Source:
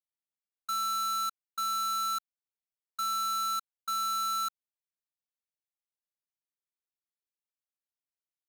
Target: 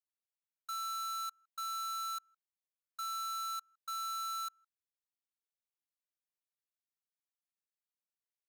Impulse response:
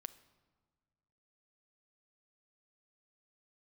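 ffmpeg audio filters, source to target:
-filter_complex "[0:a]highpass=680,asplit=2[link_01][link_02];[link_02]adelay=160,highpass=300,lowpass=3400,asoftclip=type=hard:threshold=-34.5dB,volume=-27dB[link_03];[link_01][link_03]amix=inputs=2:normalize=0,volume=-7.5dB"

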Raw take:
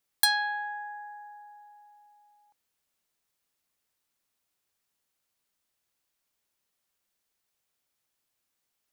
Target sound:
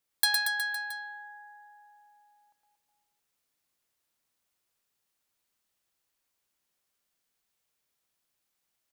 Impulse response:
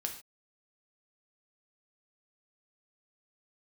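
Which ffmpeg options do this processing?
-filter_complex "[0:a]acrossover=split=880|3000[link_01][link_02][link_03];[link_01]acompressor=threshold=-51dB:ratio=6[link_04];[link_04][link_02][link_03]amix=inputs=3:normalize=0,aecho=1:1:110|231|364.1|510.5|671.6:0.631|0.398|0.251|0.158|0.1,volume=-2dB"

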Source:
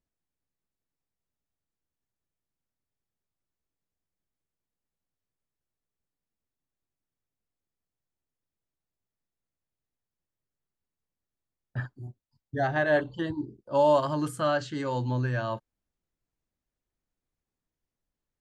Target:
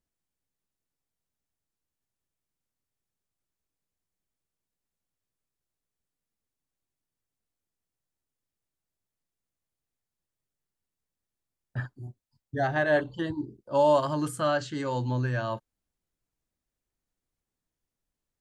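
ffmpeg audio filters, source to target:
ffmpeg -i in.wav -af "equalizer=frequency=8900:width=0.87:gain=3.5" out.wav

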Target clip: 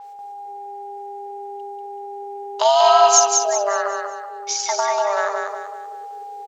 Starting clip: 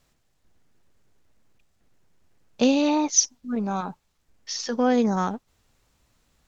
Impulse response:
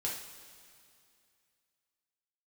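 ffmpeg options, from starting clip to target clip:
-filter_complex "[0:a]asubboost=boost=4:cutoff=88,afreqshift=400,acompressor=threshold=-26dB:ratio=6,aeval=exprs='val(0)+0.00631*sin(2*PI*810*n/s)':channel_layout=same,asplit=3[link_01][link_02][link_03];[link_01]afade=type=out:start_time=2.64:duration=0.02[link_04];[link_02]acontrast=87,afade=type=in:start_time=2.64:duration=0.02,afade=type=out:start_time=3.49:duration=0.02[link_05];[link_03]afade=type=in:start_time=3.49:duration=0.02[link_06];[link_04][link_05][link_06]amix=inputs=3:normalize=0,aecho=1:1:190|380|570|760|950:0.631|0.24|0.0911|0.0346|0.0132,adynamicequalizer=threshold=0.00891:dfrequency=6700:dqfactor=0.7:tfrequency=6700:tqfactor=0.7:attack=5:release=100:ratio=0.375:range=2.5:mode=cutabove:tftype=highshelf,volume=8dB"

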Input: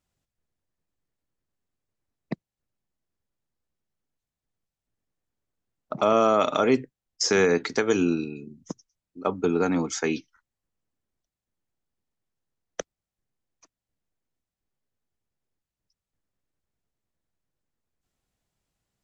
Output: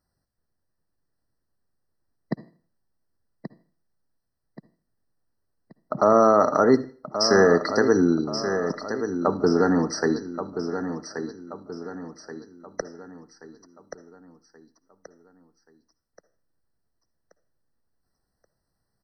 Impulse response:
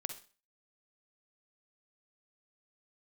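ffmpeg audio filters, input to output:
-filter_complex "[0:a]aecho=1:1:1129|2258|3387|4516|5645:0.355|0.156|0.0687|0.0302|0.0133,asplit=2[link_01][link_02];[1:a]atrim=start_sample=2205,asetrate=36603,aresample=44100[link_03];[link_02][link_03]afir=irnorm=-1:irlink=0,volume=-5.5dB[link_04];[link_01][link_04]amix=inputs=2:normalize=0,afftfilt=real='re*eq(mod(floor(b*sr/1024/2000),2),0)':imag='im*eq(mod(floor(b*sr/1024/2000),2),0)':win_size=1024:overlap=0.75"

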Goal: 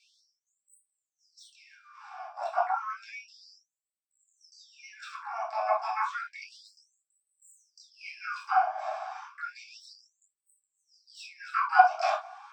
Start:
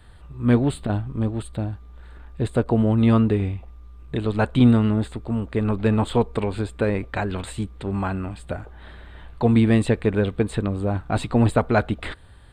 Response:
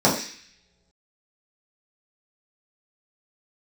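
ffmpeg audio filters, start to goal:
-filter_complex "[0:a]areverse,acompressor=threshold=-28dB:ratio=10,areverse,asplit=3[link_01][link_02][link_03];[link_01]bandpass=frequency=730:width_type=q:width=8,volume=0dB[link_04];[link_02]bandpass=frequency=1090:width_type=q:width=8,volume=-6dB[link_05];[link_03]bandpass=frequency=2440:width_type=q:width=8,volume=-9dB[link_06];[link_04][link_05][link_06]amix=inputs=3:normalize=0,asplit=2[link_07][link_08];[link_08]asetrate=88200,aresample=44100,atempo=0.5,volume=-7dB[link_09];[link_07][link_09]amix=inputs=2:normalize=0[link_10];[1:a]atrim=start_sample=2205,afade=type=out:start_time=0.13:duration=0.01,atrim=end_sample=6174[link_11];[link_10][link_11]afir=irnorm=-1:irlink=0,afftfilt=real='re*gte(b*sr/1024,590*pow(7900/590,0.5+0.5*sin(2*PI*0.31*pts/sr)))':imag='im*gte(b*sr/1024,590*pow(7900/590,0.5+0.5*sin(2*PI*0.31*pts/sr)))':win_size=1024:overlap=0.75,volume=2.5dB"

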